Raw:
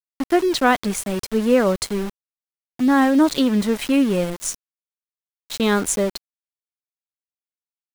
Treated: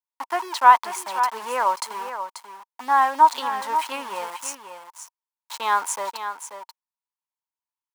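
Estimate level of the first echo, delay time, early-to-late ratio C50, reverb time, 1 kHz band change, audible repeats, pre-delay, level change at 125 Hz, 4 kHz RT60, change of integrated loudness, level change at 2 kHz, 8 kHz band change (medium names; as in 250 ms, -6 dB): -9.5 dB, 536 ms, no reverb, no reverb, +7.5 dB, 1, no reverb, under -30 dB, no reverb, -2.5 dB, -1.5 dB, -5.0 dB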